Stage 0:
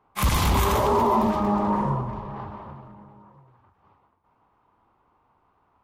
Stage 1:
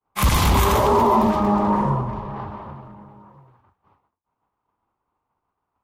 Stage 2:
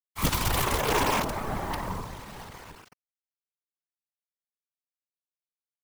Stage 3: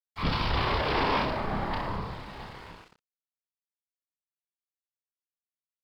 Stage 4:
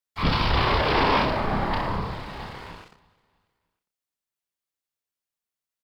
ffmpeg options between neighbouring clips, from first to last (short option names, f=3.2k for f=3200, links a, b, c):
-af "agate=range=-33dB:threshold=-54dB:ratio=3:detection=peak,volume=4dB"
-af "equalizer=f=190:t=o:w=0.49:g=-6.5,acrusher=bits=3:dc=4:mix=0:aa=0.000001,afftfilt=real='hypot(re,im)*cos(2*PI*random(0))':imag='hypot(re,im)*sin(2*PI*random(1))':win_size=512:overlap=0.75,volume=-1.5dB"
-af "aresample=11025,asoftclip=type=tanh:threshold=-22.5dB,aresample=44100,aecho=1:1:30|64.5|104.2|149.8|202.3:0.631|0.398|0.251|0.158|0.1,aeval=exprs='sgn(val(0))*max(abs(val(0))-0.00158,0)':c=same"
-af "aecho=1:1:316|632|948:0.0708|0.0297|0.0125,volume=5.5dB"